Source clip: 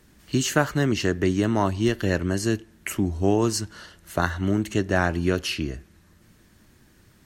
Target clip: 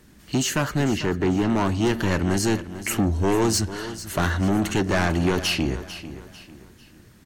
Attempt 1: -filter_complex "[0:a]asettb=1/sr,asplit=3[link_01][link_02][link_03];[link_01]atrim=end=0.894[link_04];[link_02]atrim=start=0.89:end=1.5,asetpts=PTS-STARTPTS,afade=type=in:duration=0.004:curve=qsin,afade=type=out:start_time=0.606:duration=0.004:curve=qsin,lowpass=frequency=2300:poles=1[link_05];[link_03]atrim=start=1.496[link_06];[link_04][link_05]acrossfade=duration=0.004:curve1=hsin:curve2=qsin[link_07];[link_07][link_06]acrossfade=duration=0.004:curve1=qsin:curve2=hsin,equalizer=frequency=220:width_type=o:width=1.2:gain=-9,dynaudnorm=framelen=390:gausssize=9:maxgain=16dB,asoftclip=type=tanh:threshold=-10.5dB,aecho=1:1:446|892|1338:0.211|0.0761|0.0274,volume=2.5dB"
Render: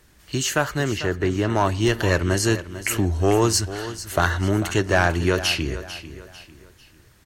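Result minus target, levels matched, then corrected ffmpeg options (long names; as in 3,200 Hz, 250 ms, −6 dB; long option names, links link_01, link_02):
soft clipping: distortion −10 dB; 250 Hz band −3.5 dB
-filter_complex "[0:a]asettb=1/sr,asplit=3[link_01][link_02][link_03];[link_01]atrim=end=0.894[link_04];[link_02]atrim=start=0.89:end=1.5,asetpts=PTS-STARTPTS,afade=type=in:duration=0.004:curve=qsin,afade=type=out:start_time=0.606:duration=0.004:curve=qsin,lowpass=frequency=2300:poles=1[link_05];[link_03]atrim=start=1.496[link_06];[link_04][link_05]acrossfade=duration=0.004:curve1=hsin:curve2=qsin[link_07];[link_07][link_06]acrossfade=duration=0.004:curve1=qsin:curve2=hsin,equalizer=frequency=220:width_type=o:width=1.2:gain=3,dynaudnorm=framelen=390:gausssize=9:maxgain=16dB,asoftclip=type=tanh:threshold=-19dB,aecho=1:1:446|892|1338:0.211|0.0761|0.0274,volume=2.5dB"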